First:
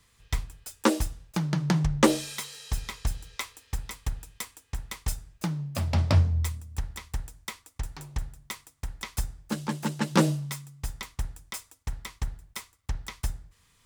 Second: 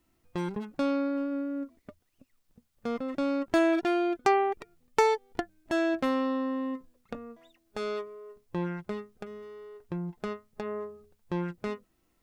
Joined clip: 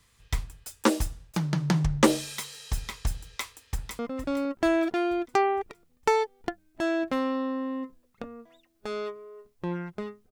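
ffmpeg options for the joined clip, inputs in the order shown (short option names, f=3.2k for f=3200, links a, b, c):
-filter_complex "[0:a]apad=whole_dur=10.31,atrim=end=10.31,atrim=end=3.992[a];[1:a]atrim=start=2.898:end=9.22[b];[a][b]acrossfade=d=0.004:c1=hsin:c2=hsin,asplit=2[c][d];[d]afade=t=in:st=3.69:d=0.01,afade=t=out:st=3.99:d=0.01,aecho=0:1:460|920|1380|1840|2300:0.281838|0.140919|0.0704596|0.0352298|0.0176149[e];[c][e]amix=inputs=2:normalize=0"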